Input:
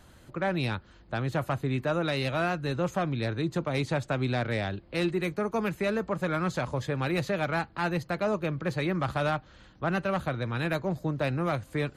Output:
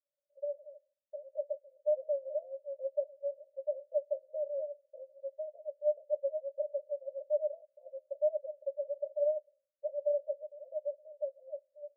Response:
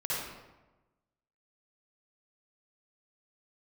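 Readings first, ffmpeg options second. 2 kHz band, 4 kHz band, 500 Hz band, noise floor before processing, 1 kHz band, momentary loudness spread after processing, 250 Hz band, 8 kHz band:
below −40 dB, below −40 dB, −2.5 dB, −55 dBFS, below −30 dB, 13 LU, below −40 dB, below −30 dB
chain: -af "agate=range=-33dB:threshold=-41dB:ratio=3:detection=peak,asuperpass=centerf=580:order=8:qfactor=7.3,dynaudnorm=framelen=120:gausssize=21:maxgain=7dB,volume=-4.5dB"

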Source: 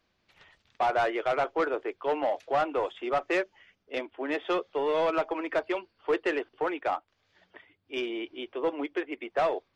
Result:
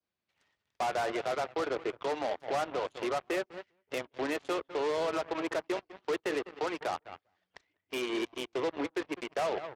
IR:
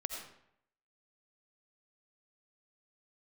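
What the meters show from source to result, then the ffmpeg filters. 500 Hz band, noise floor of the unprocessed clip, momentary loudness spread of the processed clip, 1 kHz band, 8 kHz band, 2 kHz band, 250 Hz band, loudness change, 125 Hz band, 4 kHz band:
−4.0 dB, −75 dBFS, 6 LU, −5.0 dB, can't be measured, −4.0 dB, −2.5 dB, −4.0 dB, +0.5 dB, 0.0 dB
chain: -filter_complex "[0:a]asplit=2[link_01][link_02];[link_02]adelay=199,lowpass=frequency=1900:poles=1,volume=-13dB,asplit=2[link_03][link_04];[link_04]adelay=199,lowpass=frequency=1900:poles=1,volume=0.17[link_05];[link_01][link_03][link_05]amix=inputs=3:normalize=0,adynamicequalizer=threshold=0.00562:dfrequency=2200:dqfactor=1.2:tfrequency=2200:tqfactor=1.2:attack=5:release=100:ratio=0.375:range=3:mode=cutabove:tftype=bell,alimiter=level_in=4dB:limit=-24dB:level=0:latency=1:release=247,volume=-4dB,aeval=exprs='0.0422*(cos(1*acos(clip(val(0)/0.0422,-1,1)))-cos(1*PI/2))+0.00668*(cos(7*acos(clip(val(0)/0.0422,-1,1)))-cos(7*PI/2))+0.00133*(cos(8*acos(clip(val(0)/0.0422,-1,1)))-cos(8*PI/2))':channel_layout=same,highpass=71,volume=3dB"

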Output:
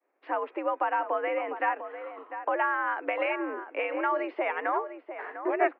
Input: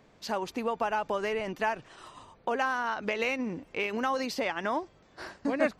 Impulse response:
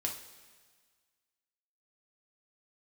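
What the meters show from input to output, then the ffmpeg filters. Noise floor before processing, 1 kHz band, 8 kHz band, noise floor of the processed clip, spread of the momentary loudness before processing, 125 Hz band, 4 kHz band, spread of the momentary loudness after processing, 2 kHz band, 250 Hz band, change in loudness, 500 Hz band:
−60 dBFS, +3.5 dB, below −30 dB, −63 dBFS, 14 LU, below −30 dB, −9.0 dB, 11 LU, +1.5 dB, −2.5 dB, +1.0 dB, +1.5 dB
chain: -filter_complex "[0:a]agate=range=-33dB:threshold=-49dB:ratio=3:detection=peak,asplit=2[link_01][link_02];[link_02]adelay=699.7,volume=-10dB,highshelf=frequency=4000:gain=-15.7[link_03];[link_01][link_03]amix=inputs=2:normalize=0,highpass=frequency=240:width_type=q:width=0.5412,highpass=frequency=240:width_type=q:width=1.307,lowpass=frequency=2300:width_type=q:width=0.5176,lowpass=frequency=2300:width_type=q:width=0.7071,lowpass=frequency=2300:width_type=q:width=1.932,afreqshift=84,volume=2dB"

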